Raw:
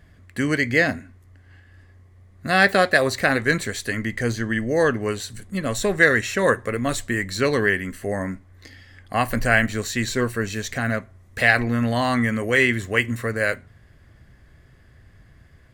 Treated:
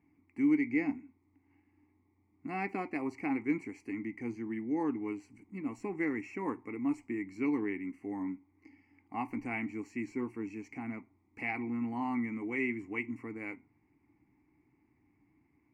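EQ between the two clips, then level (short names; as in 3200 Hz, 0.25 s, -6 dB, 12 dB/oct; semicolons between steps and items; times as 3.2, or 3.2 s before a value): vowel filter u; Butterworth band-stop 3600 Hz, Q 1.5; 0.0 dB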